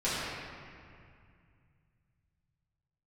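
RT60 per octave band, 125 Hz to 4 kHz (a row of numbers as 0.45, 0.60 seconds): 4.1, 2.9, 2.2, 2.3, 2.3, 1.6 seconds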